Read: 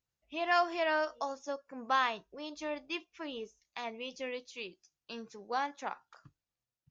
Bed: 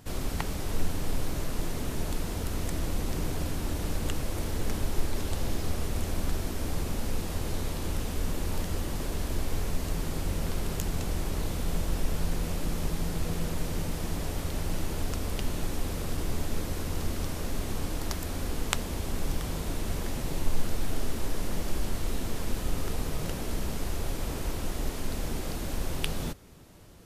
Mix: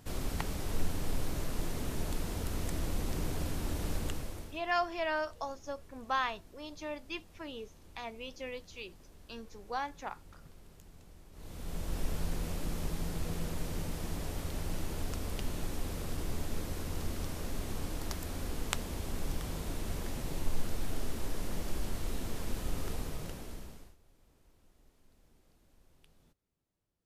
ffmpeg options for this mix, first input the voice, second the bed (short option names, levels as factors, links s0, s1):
-filter_complex "[0:a]adelay=4200,volume=0.75[s0];[1:a]volume=5.96,afade=t=out:st=3.96:d=0.65:silence=0.0891251,afade=t=in:st=11.32:d=0.71:silence=0.105925,afade=t=out:st=22.9:d=1.06:silence=0.0375837[s1];[s0][s1]amix=inputs=2:normalize=0"